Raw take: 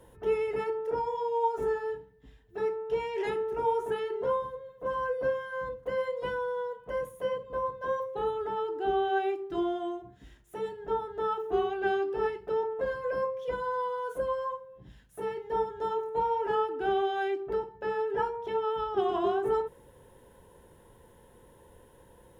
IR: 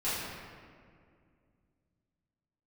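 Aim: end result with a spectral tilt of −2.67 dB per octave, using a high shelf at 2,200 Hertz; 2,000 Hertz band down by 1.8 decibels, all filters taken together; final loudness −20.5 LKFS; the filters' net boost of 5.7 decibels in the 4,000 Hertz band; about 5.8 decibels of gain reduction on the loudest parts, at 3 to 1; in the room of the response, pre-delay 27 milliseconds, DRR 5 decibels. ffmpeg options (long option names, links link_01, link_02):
-filter_complex "[0:a]equalizer=frequency=2000:width_type=o:gain=-6.5,highshelf=frequency=2200:gain=5.5,equalizer=frequency=4000:width_type=o:gain=6,acompressor=threshold=-31dB:ratio=3,asplit=2[link_01][link_02];[1:a]atrim=start_sample=2205,adelay=27[link_03];[link_02][link_03]afir=irnorm=-1:irlink=0,volume=-13.5dB[link_04];[link_01][link_04]amix=inputs=2:normalize=0,volume=13dB"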